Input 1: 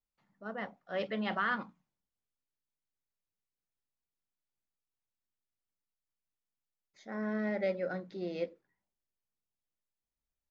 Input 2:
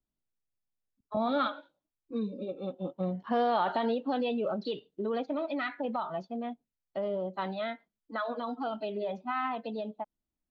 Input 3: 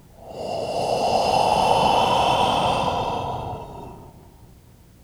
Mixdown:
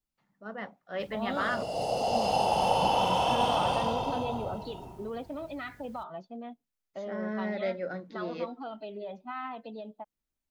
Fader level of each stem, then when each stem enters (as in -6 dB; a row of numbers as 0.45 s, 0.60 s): +0.5 dB, -5.5 dB, -7.5 dB; 0.00 s, 0.00 s, 1.00 s